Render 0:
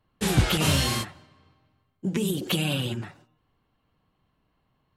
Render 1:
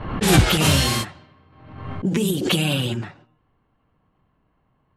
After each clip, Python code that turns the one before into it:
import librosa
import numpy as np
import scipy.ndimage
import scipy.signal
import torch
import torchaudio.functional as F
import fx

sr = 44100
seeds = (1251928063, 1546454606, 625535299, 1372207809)

y = fx.env_lowpass(x, sr, base_hz=2000.0, full_db=-23.5)
y = fx.pre_swell(y, sr, db_per_s=61.0)
y = F.gain(torch.from_numpy(y), 5.0).numpy()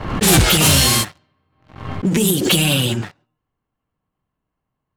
y = fx.high_shelf(x, sr, hz=5100.0, db=10.0)
y = fx.leveller(y, sr, passes=3)
y = F.gain(torch.from_numpy(y), -6.5).numpy()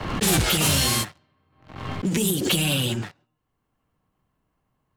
y = fx.band_squash(x, sr, depth_pct=40)
y = F.gain(torch.from_numpy(y), -7.0).numpy()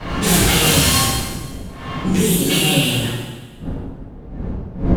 y = fx.dmg_wind(x, sr, seeds[0], corner_hz=210.0, level_db=-33.0)
y = fx.rev_plate(y, sr, seeds[1], rt60_s=1.4, hf_ratio=0.9, predelay_ms=0, drr_db=-10.0)
y = F.gain(torch.from_numpy(y), -3.5).numpy()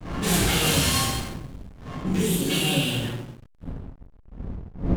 y = fx.backlash(x, sr, play_db=-24.0)
y = F.gain(torch.from_numpy(y), -7.0).numpy()